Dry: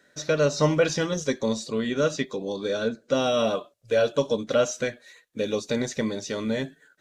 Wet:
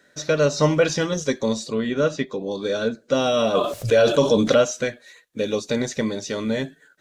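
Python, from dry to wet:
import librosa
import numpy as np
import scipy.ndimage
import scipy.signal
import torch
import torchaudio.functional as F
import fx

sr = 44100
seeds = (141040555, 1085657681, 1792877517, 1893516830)

y = fx.high_shelf(x, sr, hz=fx.line((1.73, 5100.0), (2.51, 3700.0)), db=-9.5, at=(1.73, 2.51), fade=0.02)
y = fx.env_flatten(y, sr, amount_pct=70, at=(3.54, 4.61), fade=0.02)
y = y * librosa.db_to_amplitude(3.0)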